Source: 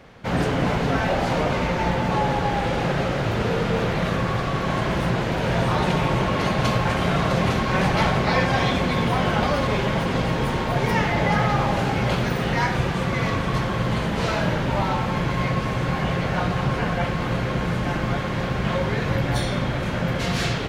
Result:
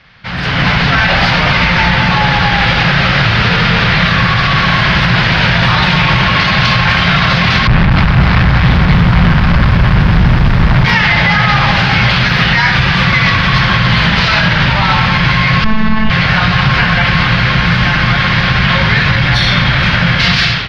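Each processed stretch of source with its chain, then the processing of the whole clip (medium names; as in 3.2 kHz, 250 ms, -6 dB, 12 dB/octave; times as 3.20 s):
7.67–10.85 s: tilt EQ -4.5 dB/octave + valve stage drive 19 dB, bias 0.4 + bit-crushed delay 249 ms, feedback 35%, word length 7-bit, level -5.5 dB
15.64–16.10 s: tilt EQ -3.5 dB/octave + robot voice 218 Hz + doubling 24 ms -12 dB
whole clip: FFT filter 170 Hz 0 dB, 260 Hz -9 dB, 450 Hz -12 dB, 1.7 kHz +7 dB, 5 kHz +8 dB, 7.5 kHz -16 dB; peak limiter -15.5 dBFS; level rider gain up to 15 dB; trim +1.5 dB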